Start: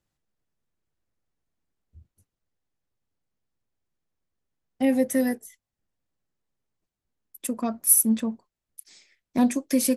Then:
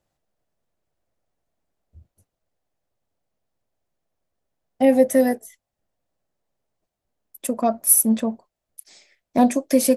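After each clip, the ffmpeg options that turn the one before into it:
-af "equalizer=f=640:t=o:w=0.84:g=11,volume=1.33"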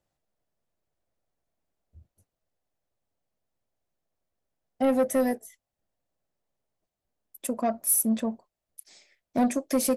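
-af "asoftclip=type=tanh:threshold=0.237,volume=0.596"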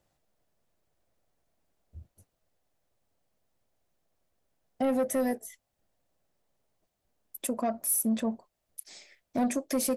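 -af "alimiter=level_in=1.58:limit=0.0631:level=0:latency=1:release=279,volume=0.631,volume=2"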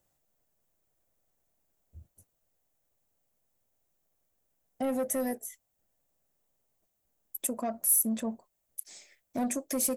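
-af "aexciter=amount=3.1:drive=2.3:freq=6400,volume=0.668"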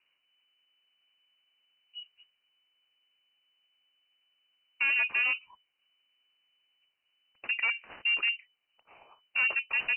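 -af "aeval=exprs='0.0398*(abs(mod(val(0)/0.0398+3,4)-2)-1)':c=same,lowpass=f=2600:t=q:w=0.5098,lowpass=f=2600:t=q:w=0.6013,lowpass=f=2600:t=q:w=0.9,lowpass=f=2600:t=q:w=2.563,afreqshift=-3000,volume=1.78"

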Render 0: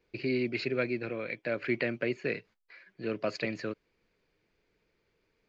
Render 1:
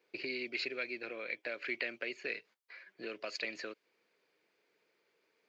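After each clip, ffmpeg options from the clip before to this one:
-filter_complex "[0:a]highpass=380,acrossover=split=2100[s0][s1];[s0]acompressor=threshold=0.00708:ratio=4[s2];[s2][s1]amix=inputs=2:normalize=0,volume=1.12"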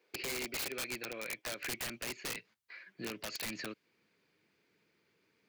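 -af "highpass=82,asubboost=boost=10:cutoff=170,aeval=exprs='(mod(47.3*val(0)+1,2)-1)/47.3':c=same,volume=1.26"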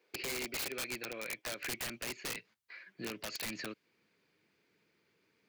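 -af anull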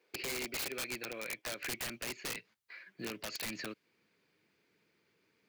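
-af "acrusher=bits=9:mode=log:mix=0:aa=0.000001"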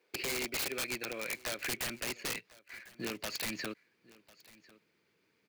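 -filter_complex "[0:a]asplit=2[s0][s1];[s1]aeval=exprs='val(0)*gte(abs(val(0)),0.00398)':c=same,volume=0.398[s2];[s0][s2]amix=inputs=2:normalize=0,aecho=1:1:1048:0.0794"

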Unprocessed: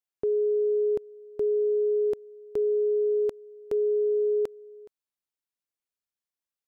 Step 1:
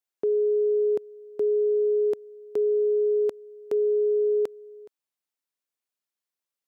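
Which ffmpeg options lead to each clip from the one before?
-af "highpass=200,volume=1.26"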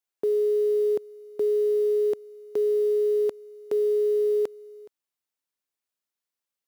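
-af "acrusher=bits=8:mode=log:mix=0:aa=0.000001"

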